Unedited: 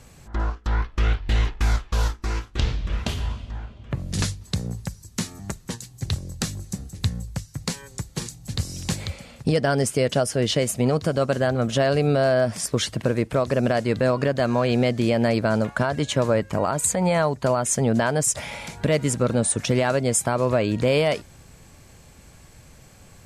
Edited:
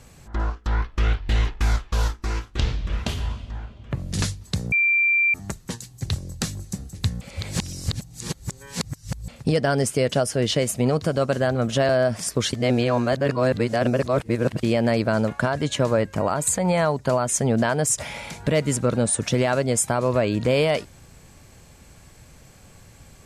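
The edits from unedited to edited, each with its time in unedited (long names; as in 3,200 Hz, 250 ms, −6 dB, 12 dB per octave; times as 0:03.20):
0:04.72–0:05.34: beep over 2,360 Hz −16 dBFS
0:07.21–0:09.28: reverse
0:11.89–0:12.26: remove
0:12.90–0:15.00: reverse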